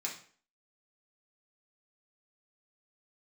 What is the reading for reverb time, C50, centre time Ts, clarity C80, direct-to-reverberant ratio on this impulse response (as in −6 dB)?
0.45 s, 7.5 dB, 23 ms, 12.0 dB, −3.0 dB